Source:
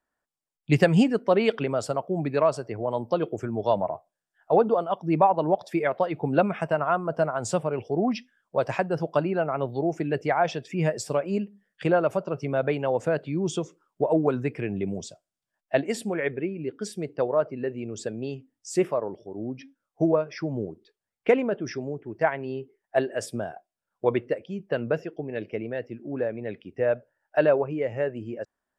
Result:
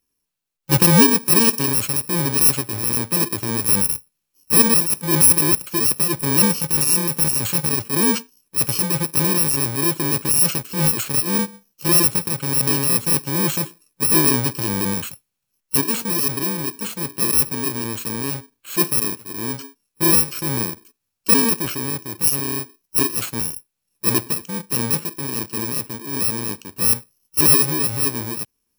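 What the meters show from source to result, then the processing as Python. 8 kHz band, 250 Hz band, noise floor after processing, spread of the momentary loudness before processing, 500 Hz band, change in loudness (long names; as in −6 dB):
+25.5 dB, +4.5 dB, −78 dBFS, 12 LU, −4.5 dB, +9.5 dB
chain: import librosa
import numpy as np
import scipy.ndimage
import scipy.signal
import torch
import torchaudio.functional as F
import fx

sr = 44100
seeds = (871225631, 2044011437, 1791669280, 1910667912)

y = fx.bit_reversed(x, sr, seeds[0], block=64)
y = fx.transient(y, sr, attack_db=-6, sustain_db=3)
y = y * librosa.db_to_amplitude(8.0)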